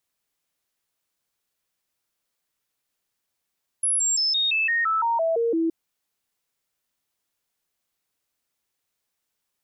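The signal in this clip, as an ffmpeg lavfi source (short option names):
-f lavfi -i "aevalsrc='0.106*clip(min(mod(t,0.17),0.17-mod(t,0.17))/0.005,0,1)*sin(2*PI*10500*pow(2,-floor(t/0.17)/2)*mod(t,0.17))':d=1.87:s=44100"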